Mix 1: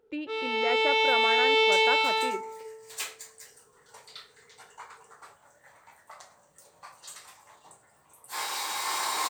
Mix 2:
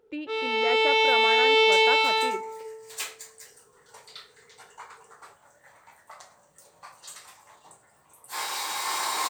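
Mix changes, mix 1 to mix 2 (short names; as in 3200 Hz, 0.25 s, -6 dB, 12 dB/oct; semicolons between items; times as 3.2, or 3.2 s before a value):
first sound: send on; second sound: send on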